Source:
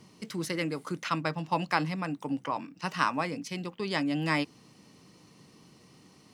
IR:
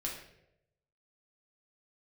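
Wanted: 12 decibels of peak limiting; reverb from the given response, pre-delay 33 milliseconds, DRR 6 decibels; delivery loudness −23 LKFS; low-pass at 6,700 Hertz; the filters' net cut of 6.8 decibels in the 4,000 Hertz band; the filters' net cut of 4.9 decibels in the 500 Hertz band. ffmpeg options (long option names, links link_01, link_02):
-filter_complex "[0:a]lowpass=6700,equalizer=frequency=500:width_type=o:gain=-6.5,equalizer=frequency=4000:width_type=o:gain=-9,alimiter=level_in=1dB:limit=-24dB:level=0:latency=1,volume=-1dB,asplit=2[link_01][link_02];[1:a]atrim=start_sample=2205,adelay=33[link_03];[link_02][link_03]afir=irnorm=-1:irlink=0,volume=-7.5dB[link_04];[link_01][link_04]amix=inputs=2:normalize=0,volume=12.5dB"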